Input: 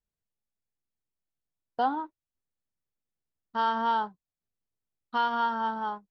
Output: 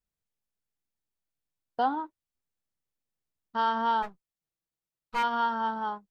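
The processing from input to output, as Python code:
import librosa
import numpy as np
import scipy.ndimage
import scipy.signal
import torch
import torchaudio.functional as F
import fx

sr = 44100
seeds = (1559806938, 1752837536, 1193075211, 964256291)

y = fx.lower_of_two(x, sr, delay_ms=6.2, at=(4.02, 5.22), fade=0.02)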